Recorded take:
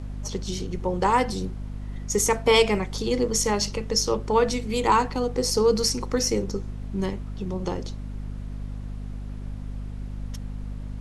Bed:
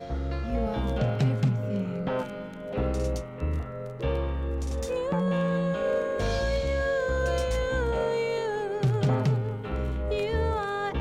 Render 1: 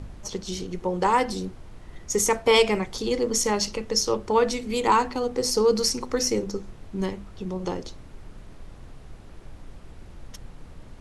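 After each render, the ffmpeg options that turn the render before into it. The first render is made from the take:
ffmpeg -i in.wav -af "bandreject=frequency=50:width_type=h:width=4,bandreject=frequency=100:width_type=h:width=4,bandreject=frequency=150:width_type=h:width=4,bandreject=frequency=200:width_type=h:width=4,bandreject=frequency=250:width_type=h:width=4" out.wav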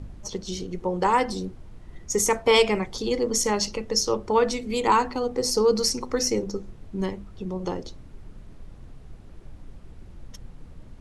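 ffmpeg -i in.wav -af "afftdn=noise_reduction=6:noise_floor=-45" out.wav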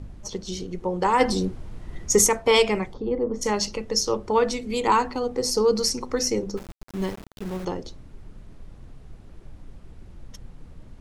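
ffmpeg -i in.wav -filter_complex "[0:a]asplit=3[link_01][link_02][link_03];[link_01]afade=type=out:start_time=1.19:duration=0.02[link_04];[link_02]acontrast=65,afade=type=in:start_time=1.19:duration=0.02,afade=type=out:start_time=2.26:duration=0.02[link_05];[link_03]afade=type=in:start_time=2.26:duration=0.02[link_06];[link_04][link_05][link_06]amix=inputs=3:normalize=0,asplit=3[link_07][link_08][link_09];[link_07]afade=type=out:start_time=2.92:duration=0.02[link_10];[link_08]lowpass=1100,afade=type=in:start_time=2.92:duration=0.02,afade=type=out:start_time=3.41:duration=0.02[link_11];[link_09]afade=type=in:start_time=3.41:duration=0.02[link_12];[link_10][link_11][link_12]amix=inputs=3:normalize=0,asettb=1/sr,asplit=3[link_13][link_14][link_15];[link_13]atrim=end=6.574[link_16];[link_14]atrim=start=6.57:end=7.65,asetpts=PTS-STARTPTS,afade=type=in:duration=0.004:curve=qsin,afade=type=out:start_time=1.076:duration=0.004:curve=qsin,aeval=exprs='val(0)*gte(abs(val(0)),0.0168)':channel_layout=same[link_17];[link_15]atrim=start=7.646[link_18];[link_16][link_17]acrossfade=duration=0.004:curve1=hsin:curve2=qsin[link_19];[link_19][link_18]acrossfade=duration=0.004:curve1=qsin:curve2=hsin" out.wav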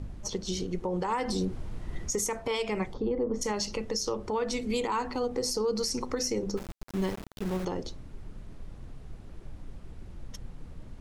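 ffmpeg -i in.wav -af "acompressor=threshold=-23dB:ratio=6,alimiter=limit=-21dB:level=0:latency=1:release=72" out.wav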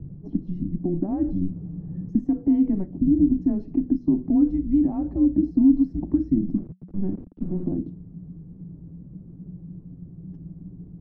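ffmpeg -i in.wav -af "lowpass=frequency=470:width_type=q:width=4.9,afreqshift=-190" out.wav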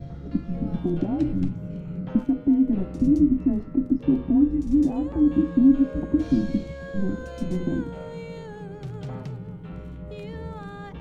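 ffmpeg -i in.wav -i bed.wav -filter_complex "[1:a]volume=-11dB[link_01];[0:a][link_01]amix=inputs=2:normalize=0" out.wav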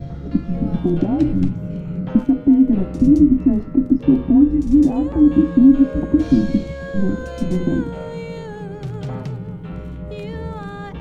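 ffmpeg -i in.wav -af "volume=7dB,alimiter=limit=-3dB:level=0:latency=1" out.wav

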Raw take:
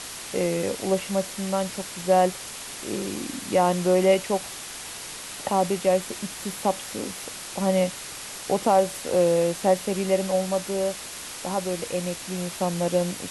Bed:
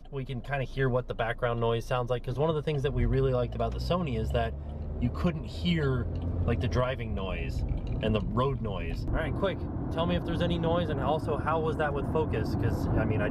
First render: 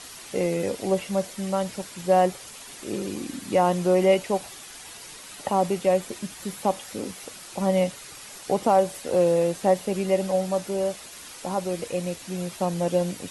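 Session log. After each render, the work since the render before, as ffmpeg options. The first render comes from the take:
ffmpeg -i in.wav -af "afftdn=noise_reduction=8:noise_floor=-38" out.wav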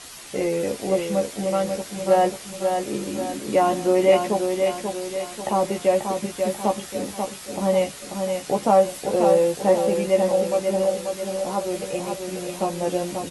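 ffmpeg -i in.wav -filter_complex "[0:a]asplit=2[link_01][link_02];[link_02]adelay=14,volume=-4dB[link_03];[link_01][link_03]amix=inputs=2:normalize=0,aecho=1:1:538|1076|1614|2152|2690|3228:0.531|0.244|0.112|0.0517|0.0238|0.0109" out.wav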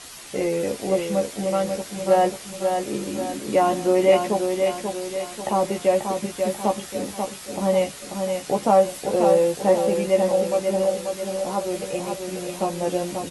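ffmpeg -i in.wav -af anull out.wav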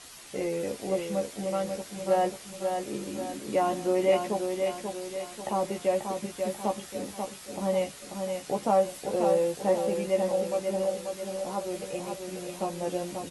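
ffmpeg -i in.wav -af "volume=-7dB" out.wav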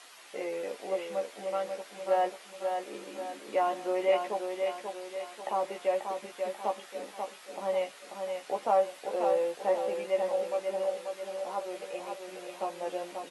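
ffmpeg -i in.wav -filter_complex "[0:a]highpass=520,acrossover=split=3600[link_01][link_02];[link_02]acompressor=threshold=-56dB:ratio=4:attack=1:release=60[link_03];[link_01][link_03]amix=inputs=2:normalize=0" out.wav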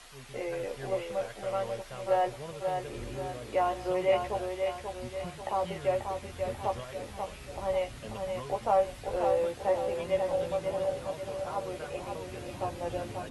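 ffmpeg -i in.wav -i bed.wav -filter_complex "[1:a]volume=-15dB[link_01];[0:a][link_01]amix=inputs=2:normalize=0" out.wav

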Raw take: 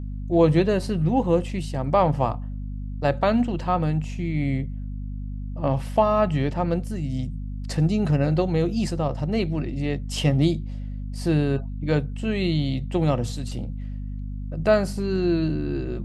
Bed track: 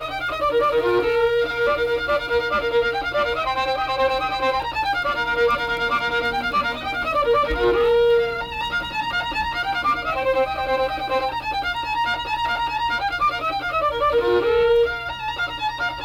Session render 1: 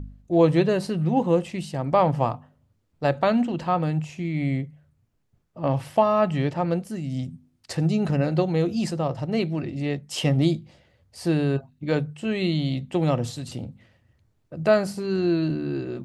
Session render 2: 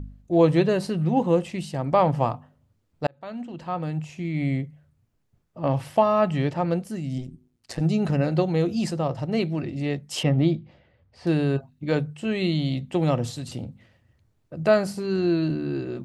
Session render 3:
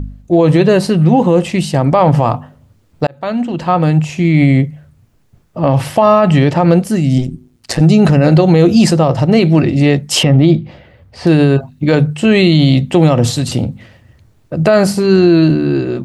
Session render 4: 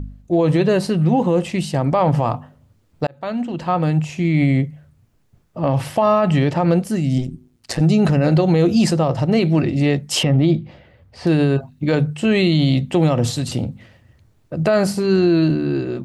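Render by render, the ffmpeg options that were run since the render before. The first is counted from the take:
ffmpeg -i in.wav -af "bandreject=frequency=50:width_type=h:width=4,bandreject=frequency=100:width_type=h:width=4,bandreject=frequency=150:width_type=h:width=4,bandreject=frequency=200:width_type=h:width=4,bandreject=frequency=250:width_type=h:width=4" out.wav
ffmpeg -i in.wav -filter_complex "[0:a]asettb=1/sr,asplit=3[link_01][link_02][link_03];[link_01]atrim=end=7.184[link_04];[link_02]atrim=start=7.18:end=7.81,asetpts=PTS-STARTPTS,afade=type=in:duration=0.004:curve=qsin,afade=type=out:start_time=0.626:duration=0.004:curve=qsin,tremolo=f=120:d=0.824[link_05];[link_03]atrim=start=7.806[link_06];[link_04][link_05]acrossfade=duration=0.004:curve1=hsin:curve2=qsin[link_07];[link_07][link_06]acrossfade=duration=0.004:curve1=qsin:curve2=hsin,asettb=1/sr,asplit=3[link_08][link_09][link_10];[link_08]atrim=end=10.234[link_11];[link_09]atrim=start=10.23:end=11.27,asetpts=PTS-STARTPTS,afade=type=in:duration=0.004:curve=qsin,afade=type=out:start_time=1.036:duration=0.004:curve=qsin,lowpass=2800[link_12];[link_10]atrim=start=11.266[link_13];[link_11][link_12]acrossfade=duration=0.004:curve1=hsin:curve2=qsin[link_14];[link_14][link_13]acrossfade=duration=0.004:curve1=qsin:curve2=hsin,asplit=2[link_15][link_16];[link_15]atrim=end=3.07,asetpts=PTS-STARTPTS,afade=type=out:start_time=3.066:duration=0.004:curve=hsin[link_17];[link_16]atrim=start=3.07,asetpts=PTS-STARTPTS,afade=type=in:duration=1.34[link_18];[link_17][link_18]concat=n=2:v=0:a=1" out.wav
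ffmpeg -i in.wav -af "dynaudnorm=framelen=410:gausssize=7:maxgain=5dB,alimiter=level_in=13.5dB:limit=-1dB:release=50:level=0:latency=1" out.wav
ffmpeg -i in.wav -af "volume=-6.5dB" out.wav

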